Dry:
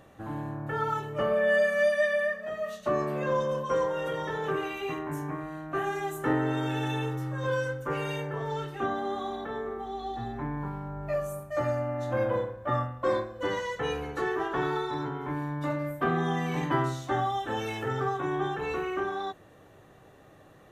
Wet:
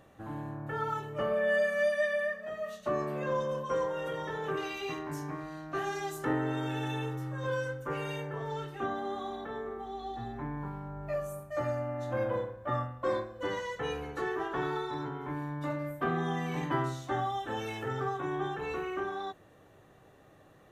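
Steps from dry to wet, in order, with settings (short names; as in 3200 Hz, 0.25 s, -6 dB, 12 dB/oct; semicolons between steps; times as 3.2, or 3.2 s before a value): 4.57–6.25 bell 4900 Hz +14.5 dB 0.75 oct; gain -4 dB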